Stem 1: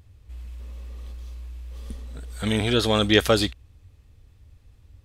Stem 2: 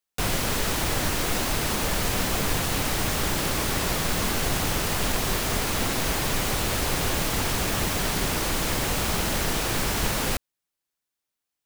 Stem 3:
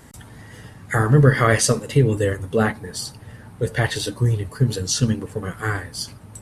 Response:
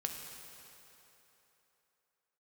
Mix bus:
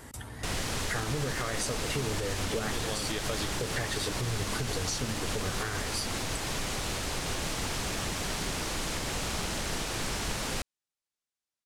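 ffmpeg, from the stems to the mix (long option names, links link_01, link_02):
-filter_complex "[0:a]volume=-10dB[link_01];[1:a]lowpass=8000,highshelf=frequency=5000:gain=6,adelay=250,volume=-7.5dB[link_02];[2:a]volume=0.5dB[link_03];[link_01][link_03]amix=inputs=2:normalize=0,equalizer=frequency=170:width_type=o:width=0.77:gain=-7.5,acompressor=threshold=-28dB:ratio=6,volume=0dB[link_04];[link_02][link_04]amix=inputs=2:normalize=0,alimiter=limit=-21.5dB:level=0:latency=1:release=98"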